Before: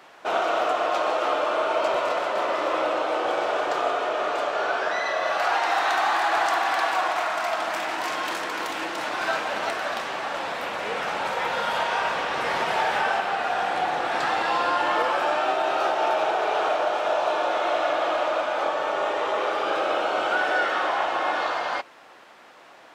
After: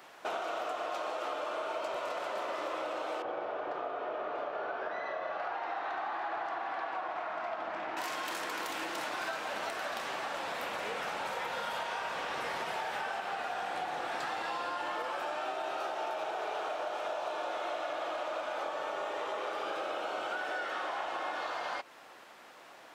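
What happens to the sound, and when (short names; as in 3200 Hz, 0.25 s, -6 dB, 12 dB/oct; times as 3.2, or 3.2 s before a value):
3.22–7.97 tape spacing loss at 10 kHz 36 dB
whole clip: high shelf 8700 Hz +9.5 dB; compressor, threshold -29 dBFS; gain -4.5 dB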